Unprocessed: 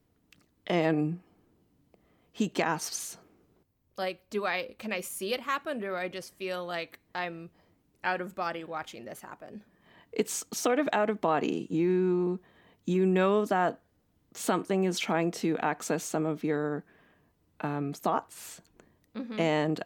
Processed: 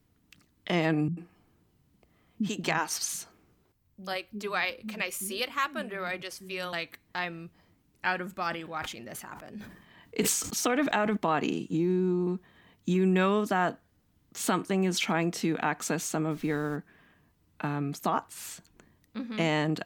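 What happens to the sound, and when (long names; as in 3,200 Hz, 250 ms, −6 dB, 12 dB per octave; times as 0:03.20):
0:01.08–0:06.73: multiband delay without the direct sound lows, highs 90 ms, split 270 Hz
0:08.44–0:11.17: level that may fall only so fast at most 71 dB per second
0:11.77–0:12.27: parametric band 2,000 Hz −10.5 dB 1.6 octaves
0:16.30–0:16.75: background noise pink −58 dBFS
whole clip: parametric band 520 Hz −7 dB 1.5 octaves; level +3.5 dB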